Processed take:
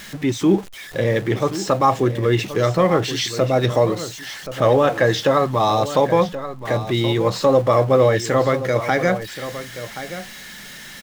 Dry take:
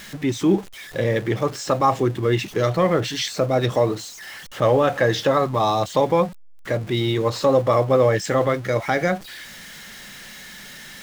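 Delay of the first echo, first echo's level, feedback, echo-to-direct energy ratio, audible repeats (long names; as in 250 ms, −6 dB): 1,077 ms, −12.5 dB, repeats not evenly spaced, −12.5 dB, 1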